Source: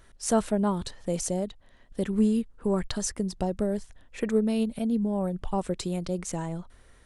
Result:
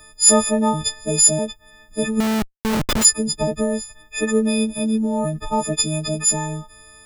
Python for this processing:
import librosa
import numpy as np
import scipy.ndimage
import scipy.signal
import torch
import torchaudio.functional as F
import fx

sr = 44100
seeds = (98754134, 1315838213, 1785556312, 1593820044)

y = fx.freq_snap(x, sr, grid_st=6)
y = fx.schmitt(y, sr, flips_db=-25.5, at=(2.2, 3.05))
y = F.gain(torch.from_numpy(y), 6.0).numpy()